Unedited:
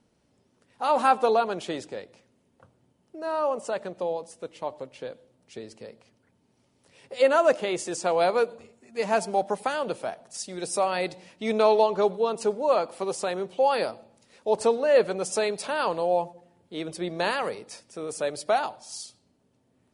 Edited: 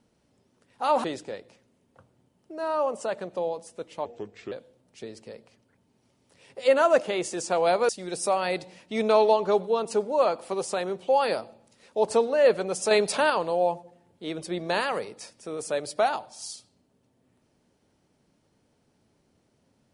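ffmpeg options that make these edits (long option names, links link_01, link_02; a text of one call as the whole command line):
ffmpeg -i in.wav -filter_complex "[0:a]asplit=7[link_01][link_02][link_03][link_04][link_05][link_06][link_07];[link_01]atrim=end=1.042[link_08];[link_02]atrim=start=1.678:end=4.694[link_09];[link_03]atrim=start=4.69:end=5.06,asetpts=PTS-STARTPTS,asetrate=34839,aresample=44100,atrim=end_sample=20654,asetpts=PTS-STARTPTS[link_10];[link_04]atrim=start=5.056:end=8.432[link_11];[link_05]atrim=start=10.388:end=15.412[link_12];[link_06]atrim=start=15.408:end=15.802,asetpts=PTS-STARTPTS,volume=6dB[link_13];[link_07]atrim=start=15.798[link_14];[link_08][link_09]acrossfade=duration=0.004:curve1=hsin:curve2=hsin[link_15];[link_15][link_10]acrossfade=duration=0.004:curve1=hsin:curve2=hsin[link_16];[link_16][link_11]acrossfade=duration=0.004:curve1=hsin:curve2=hsin[link_17];[link_17][link_12]acrossfade=duration=0.004:curve1=hsin:curve2=hsin[link_18];[link_18][link_13]acrossfade=duration=0.004:curve1=hsin:curve2=hsin[link_19];[link_19][link_14]acrossfade=duration=0.004:curve1=hsin:curve2=hsin" out.wav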